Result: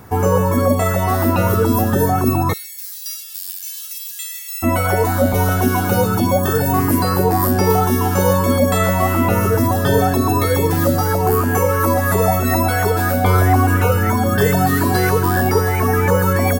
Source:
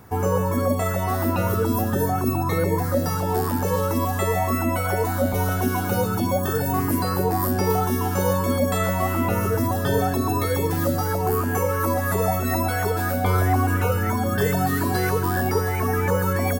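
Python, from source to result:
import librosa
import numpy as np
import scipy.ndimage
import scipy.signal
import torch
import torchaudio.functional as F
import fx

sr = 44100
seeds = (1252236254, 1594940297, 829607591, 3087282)

y = fx.cheby2_highpass(x, sr, hz=700.0, order=4, stop_db=70, at=(2.52, 4.62), fade=0.02)
y = y * 10.0 ** (6.5 / 20.0)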